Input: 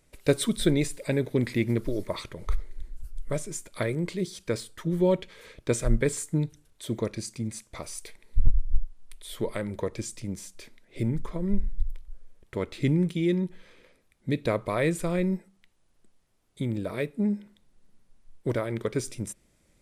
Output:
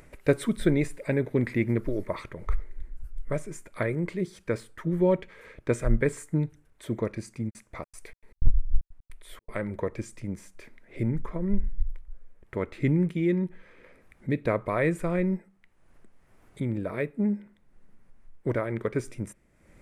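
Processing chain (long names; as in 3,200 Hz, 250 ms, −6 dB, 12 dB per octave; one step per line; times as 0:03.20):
high shelf with overshoot 2,700 Hz −9 dB, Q 1.5
upward compression, threshold −42 dBFS
0:07.49–0:09.55: gate pattern "x.xx.x.xxxx.x.xx" 155 BPM −60 dB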